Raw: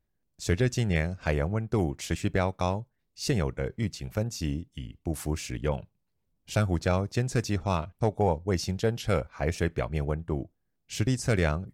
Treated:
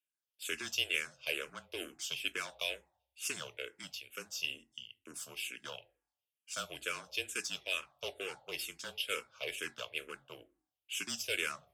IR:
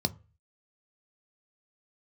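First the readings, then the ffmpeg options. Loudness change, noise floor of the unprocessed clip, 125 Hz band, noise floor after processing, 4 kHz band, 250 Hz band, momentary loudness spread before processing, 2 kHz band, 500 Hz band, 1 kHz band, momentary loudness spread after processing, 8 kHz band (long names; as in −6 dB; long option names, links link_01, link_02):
−9.0 dB, −77 dBFS, −34.0 dB, below −85 dBFS, +2.5 dB, −23.0 dB, 9 LU, −2.0 dB, −16.0 dB, −14.5 dB, 11 LU, −2.5 dB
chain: -filter_complex "[0:a]aeval=exprs='0.188*(cos(1*acos(clip(val(0)/0.188,-1,1)))-cos(1*PI/2))+0.0106*(cos(3*acos(clip(val(0)/0.188,-1,1)))-cos(3*PI/2))+0.0106*(cos(7*acos(clip(val(0)/0.188,-1,1)))-cos(7*PI/2))+0.00668*(cos(8*acos(clip(val(0)/0.188,-1,1)))-cos(8*PI/2))':channel_layout=same,afreqshift=-26,highpass=frequency=710:poles=1,asplit=2[link_01][link_02];[link_02]aeval=exprs='0.0422*(abs(mod(val(0)/0.0422+3,4)-2)-1)':channel_layout=same,volume=-6.5dB[link_03];[link_01][link_03]amix=inputs=2:normalize=0,aderivative[link_04];[1:a]atrim=start_sample=2205,asetrate=27342,aresample=44100[link_05];[link_04][link_05]afir=irnorm=-1:irlink=0,asplit=2[link_06][link_07];[link_07]afreqshift=-2.2[link_08];[link_06][link_08]amix=inputs=2:normalize=1,volume=1dB"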